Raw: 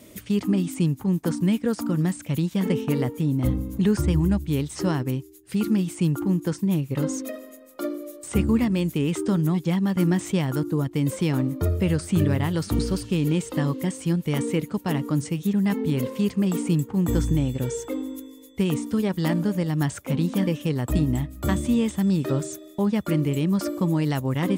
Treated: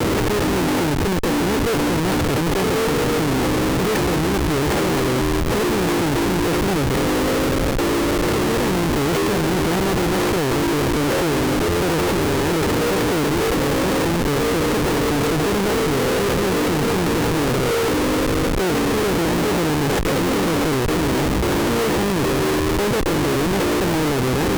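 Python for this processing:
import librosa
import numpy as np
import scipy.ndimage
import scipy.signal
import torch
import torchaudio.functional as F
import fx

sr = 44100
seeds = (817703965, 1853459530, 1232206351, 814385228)

p1 = fx.bin_compress(x, sr, power=0.4)
p2 = scipy.signal.sosfilt(scipy.signal.butter(2, 190.0, 'highpass', fs=sr, output='sos'), p1)
p3 = fx.high_shelf(p2, sr, hz=5200.0, db=-7.0)
p4 = p3 + 0.63 * np.pad(p3, (int(2.3 * sr / 1000.0), 0))[:len(p3)]
p5 = fx.over_compress(p4, sr, threshold_db=-22.0, ratio=-0.5)
p6 = p4 + (p5 * 10.0 ** (2.5 / 20.0))
p7 = fx.schmitt(p6, sr, flips_db=-18.5)
p8 = fx.vibrato(p7, sr, rate_hz=1.1, depth_cents=44.0)
y = p8 * 10.0 ** (-3.5 / 20.0)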